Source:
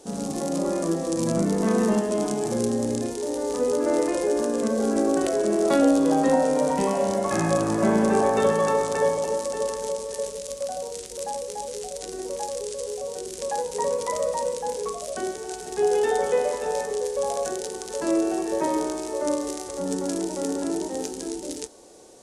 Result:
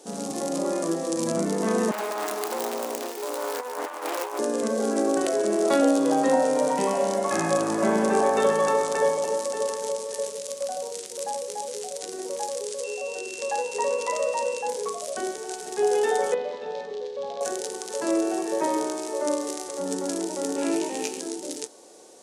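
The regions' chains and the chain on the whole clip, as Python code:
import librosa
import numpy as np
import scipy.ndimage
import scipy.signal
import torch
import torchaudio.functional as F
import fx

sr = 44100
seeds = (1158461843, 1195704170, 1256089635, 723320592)

y = fx.chain(x, sr, fx.self_delay(depth_ms=0.7),
    fx.highpass(hz=470.0, slope=12),
    fx.over_compress(threshold_db=-29.0, ratio=-0.5), at=(1.91, 4.39))
y = fx.lowpass(y, sr, hz=8700.0, slope=12, at=(12.83, 14.67), fade=0.02)
y = fx.peak_eq(y, sr, hz=150.0, db=-8.5, octaves=0.69, at=(12.83, 14.67), fade=0.02)
y = fx.dmg_tone(y, sr, hz=2700.0, level_db=-39.0, at=(12.83, 14.67), fade=0.02)
y = fx.chain(y, sr, fx.ladder_lowpass(hz=4400.0, resonance_pct=50),
    fx.low_shelf(hz=340.0, db=11.5), at=(16.34, 17.41))
y = fx.chain(y, sr, fx.peak_eq(hz=2500.0, db=13.0, octaves=0.52),
    fx.doubler(ms=18.0, db=-5.0), at=(20.56, 21.2))
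y = scipy.signal.sosfilt(scipy.signal.butter(2, 170.0, 'highpass', fs=sr, output='sos'), y)
y = fx.low_shelf(y, sr, hz=260.0, db=-6.5)
y = y * librosa.db_to_amplitude(1.0)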